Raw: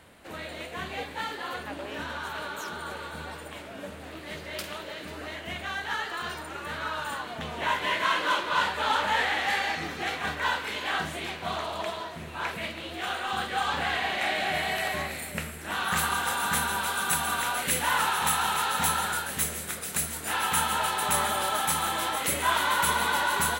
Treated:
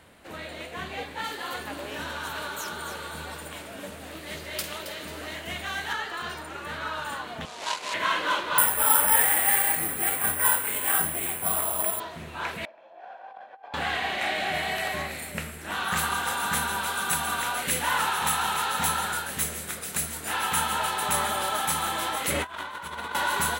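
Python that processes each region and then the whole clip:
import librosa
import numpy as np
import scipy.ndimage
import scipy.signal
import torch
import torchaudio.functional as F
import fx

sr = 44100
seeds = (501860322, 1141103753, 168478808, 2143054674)

y = fx.chain(x, sr, fx.high_shelf(hz=5300.0, db=9.5),
    fx.echo_single(ms=271, db=-10.5), at=(1.24, 5.93))
y = fx.chain(y, sr, fx.median_filter(points=25),
    fx.weighting(curve='ITU-R 468'), at=(7.45, 7.94))
y = fx.chain(y, sr, fx.lowpass(hz=2900.0, slope=12),
    fx.resample_bad(factor=4, down='filtered', up='zero_stuff'), at=(8.58, 12.0))
y = fx.chain(y, sr, fx.lower_of_two(delay_ms=1.2),
    fx.ladder_bandpass(hz=660.0, resonance_pct=55),
    fx.over_compress(threshold_db=-43.0, ratio=-0.5), at=(12.65, 13.74))
y = fx.chain(y, sr, fx.lowpass(hz=3300.0, slope=6),
    fx.over_compress(threshold_db=-32.0, ratio=-0.5), at=(22.3, 23.15))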